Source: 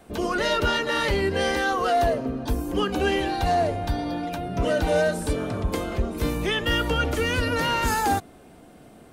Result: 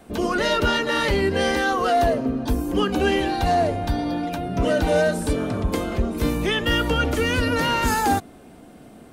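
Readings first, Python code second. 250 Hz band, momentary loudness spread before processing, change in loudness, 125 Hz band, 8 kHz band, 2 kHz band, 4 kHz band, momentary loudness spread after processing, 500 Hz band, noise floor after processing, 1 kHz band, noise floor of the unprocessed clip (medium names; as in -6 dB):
+4.5 dB, 6 LU, +2.5 dB, +2.5 dB, +2.0 dB, +2.0 dB, +2.0 dB, 5 LU, +2.5 dB, -46 dBFS, +2.0 dB, -49 dBFS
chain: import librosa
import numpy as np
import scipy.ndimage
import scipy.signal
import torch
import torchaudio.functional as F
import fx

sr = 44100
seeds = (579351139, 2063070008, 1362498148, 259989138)

y = fx.peak_eq(x, sr, hz=240.0, db=4.0, octaves=0.66)
y = y * 10.0 ** (2.0 / 20.0)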